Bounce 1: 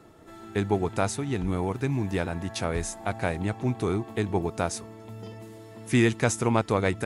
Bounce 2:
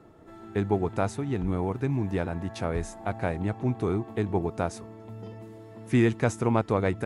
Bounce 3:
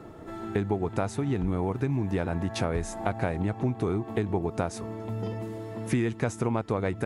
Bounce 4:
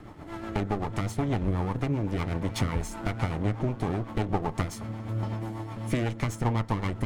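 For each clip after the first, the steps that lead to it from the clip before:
high-shelf EQ 2,400 Hz −11 dB
downward compressor 6 to 1, threshold −33 dBFS, peak gain reduction 15 dB; level +8.5 dB
lower of the sound and its delayed copy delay 0.94 ms; rotating-speaker cabinet horn 8 Hz; feedback delay network reverb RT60 0.31 s, high-frequency decay 0.4×, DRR 13 dB; level +3 dB

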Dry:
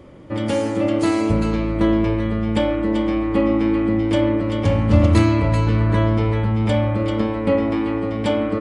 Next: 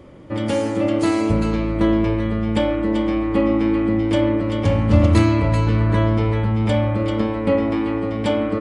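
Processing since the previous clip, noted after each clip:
no processing that can be heard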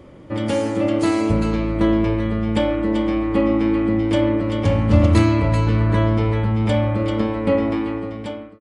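fade-out on the ending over 0.93 s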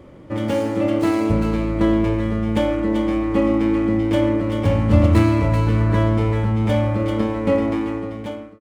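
running median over 9 samples

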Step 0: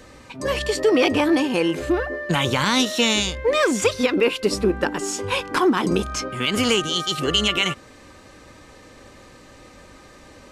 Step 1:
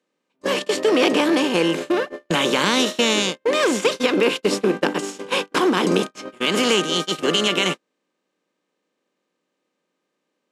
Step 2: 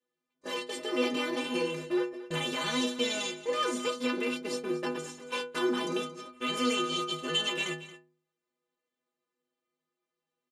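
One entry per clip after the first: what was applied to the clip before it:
compressor on every frequency bin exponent 0.6; Chebyshev high-pass filter 170 Hz, order 4; noise gate −19 dBFS, range −43 dB; level −2 dB
stiff-string resonator 74 Hz, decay 0.76 s, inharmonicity 0.03; single-tap delay 227 ms −15.5 dB

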